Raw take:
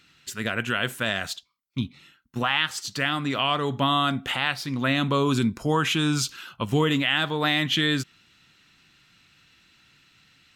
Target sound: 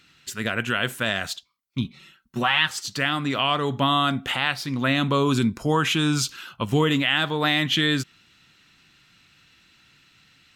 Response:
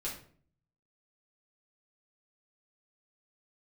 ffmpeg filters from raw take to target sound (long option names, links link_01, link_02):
-filter_complex "[0:a]asettb=1/sr,asplit=3[link_01][link_02][link_03];[link_01]atrim=end=1.844[link_04];[link_02]atrim=start=1.84:end=2.68,asetpts=PTS-STARTPTS,afade=type=in:duration=0.004:curve=qsin,afade=type=out:start_time=0.836:duration=0.004:curve=qsin,aecho=1:1:5.3:0.64,atrim=end_sample=37044[link_05];[link_03]atrim=start=2.676[link_06];[link_04][link_05]acrossfade=duration=0.004:curve1=hsin:curve2=qsin[link_07];[link_07][link_06]acrossfade=duration=0.004:curve1=qsin:curve2=hsin,volume=1.5dB"